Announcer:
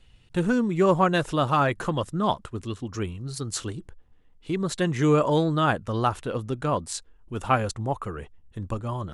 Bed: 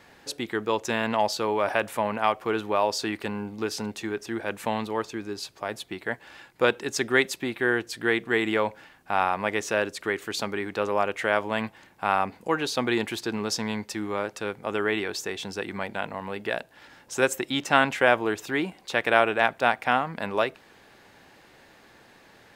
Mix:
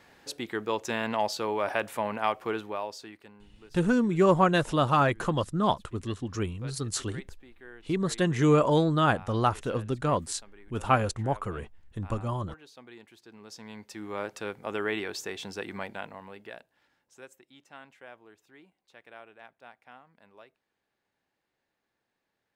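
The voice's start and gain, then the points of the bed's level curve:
3.40 s, -1.0 dB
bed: 2.49 s -4 dB
3.45 s -24.5 dB
13.18 s -24.5 dB
14.23 s -4.5 dB
15.8 s -4.5 dB
17.42 s -28.5 dB

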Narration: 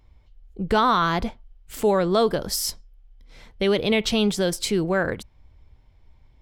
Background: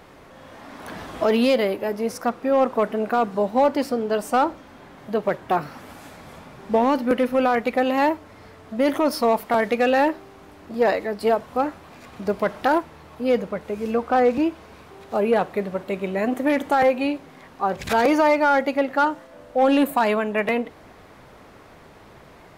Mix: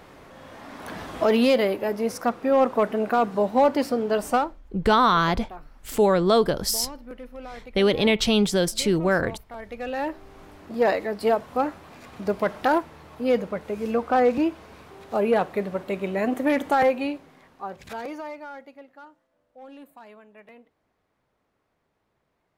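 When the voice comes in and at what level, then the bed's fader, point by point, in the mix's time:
4.15 s, +1.0 dB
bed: 4.35 s -0.5 dB
4.61 s -20 dB
9.5 s -20 dB
10.4 s -1.5 dB
16.81 s -1.5 dB
19 s -27 dB

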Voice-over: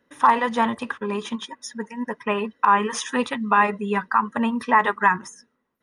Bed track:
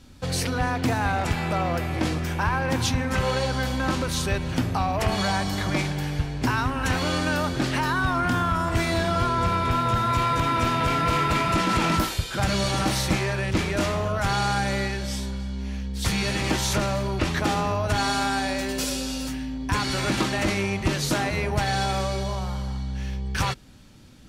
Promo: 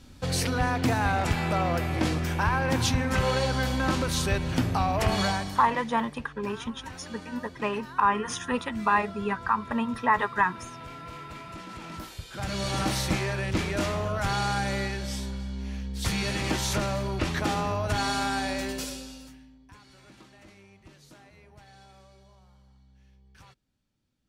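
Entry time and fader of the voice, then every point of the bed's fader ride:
5.35 s, -5.5 dB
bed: 5.25 s -1 dB
5.86 s -19 dB
11.85 s -19 dB
12.78 s -3.5 dB
18.67 s -3.5 dB
19.79 s -28.5 dB

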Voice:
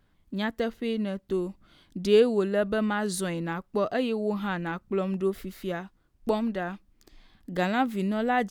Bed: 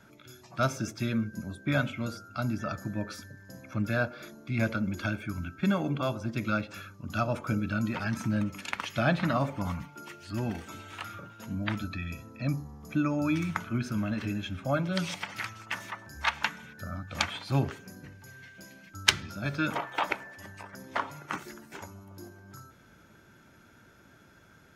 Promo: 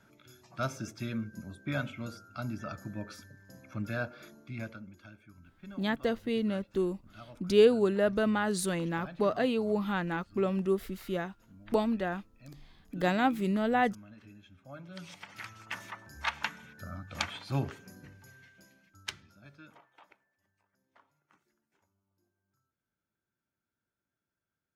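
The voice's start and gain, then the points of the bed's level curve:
5.45 s, -1.5 dB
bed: 4.39 s -6 dB
4.99 s -21 dB
14.61 s -21 dB
15.64 s -4.5 dB
18.19 s -4.5 dB
20.27 s -33 dB

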